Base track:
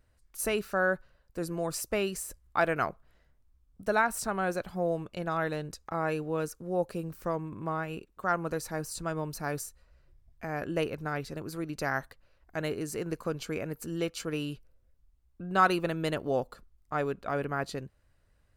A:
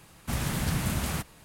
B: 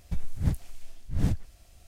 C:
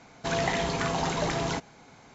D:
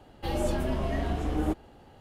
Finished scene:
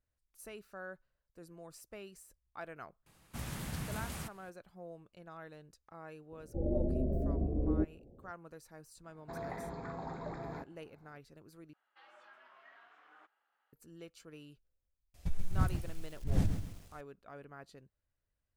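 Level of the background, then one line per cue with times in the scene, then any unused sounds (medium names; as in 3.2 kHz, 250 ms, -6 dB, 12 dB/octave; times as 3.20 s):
base track -19 dB
3.06 s: add A -11.5 dB
6.31 s: add D -3 dB + steep low-pass 610 Hz 48 dB/octave
9.04 s: add C -13 dB + boxcar filter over 15 samples
11.73 s: replace with D -8.5 dB + ladder band-pass 1.6 kHz, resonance 50%
15.14 s: add B -4.5 dB + bit-crushed delay 133 ms, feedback 35%, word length 8-bit, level -7 dB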